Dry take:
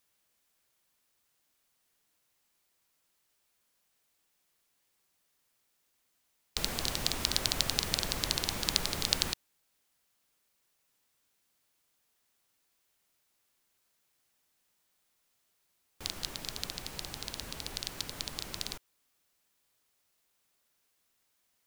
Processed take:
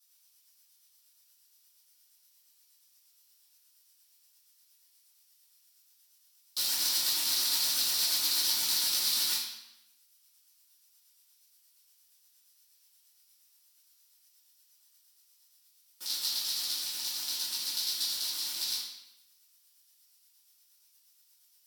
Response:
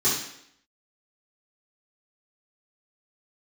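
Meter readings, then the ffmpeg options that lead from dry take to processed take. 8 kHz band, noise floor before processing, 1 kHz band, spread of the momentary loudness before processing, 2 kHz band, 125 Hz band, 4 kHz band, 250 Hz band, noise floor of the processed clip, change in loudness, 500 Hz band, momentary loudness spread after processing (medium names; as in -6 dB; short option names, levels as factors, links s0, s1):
+6.0 dB, -76 dBFS, -5.0 dB, 11 LU, -2.0 dB, under -20 dB, +4.5 dB, -11.5 dB, -67 dBFS, +5.0 dB, -12.0 dB, 8 LU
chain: -filter_complex "[0:a]tremolo=f=8.5:d=0.67,asoftclip=type=tanh:threshold=0.0794,aderivative[s0];[1:a]atrim=start_sample=2205,asetrate=35721,aresample=44100[s1];[s0][s1]afir=irnorm=-1:irlink=0"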